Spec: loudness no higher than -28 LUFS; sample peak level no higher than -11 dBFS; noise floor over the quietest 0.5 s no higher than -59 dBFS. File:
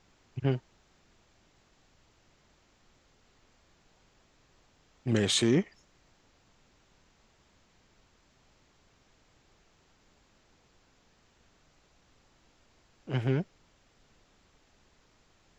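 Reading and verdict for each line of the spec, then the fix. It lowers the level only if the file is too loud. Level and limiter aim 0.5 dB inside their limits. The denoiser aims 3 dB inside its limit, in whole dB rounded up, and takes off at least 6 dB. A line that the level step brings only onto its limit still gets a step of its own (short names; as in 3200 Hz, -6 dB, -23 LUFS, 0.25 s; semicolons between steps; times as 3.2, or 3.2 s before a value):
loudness -30.0 LUFS: OK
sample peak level -15.0 dBFS: OK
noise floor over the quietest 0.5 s -66 dBFS: OK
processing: none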